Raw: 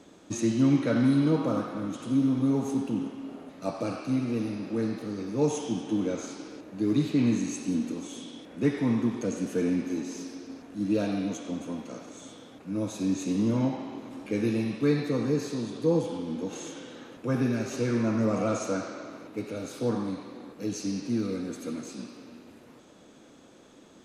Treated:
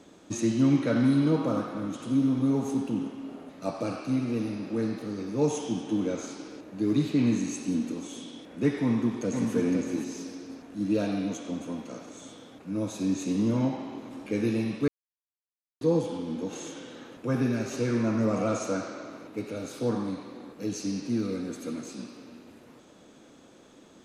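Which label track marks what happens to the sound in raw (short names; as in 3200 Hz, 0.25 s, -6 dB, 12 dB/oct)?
8.820000	9.530000	echo throw 0.51 s, feedback 15%, level -4.5 dB
14.880000	15.810000	mute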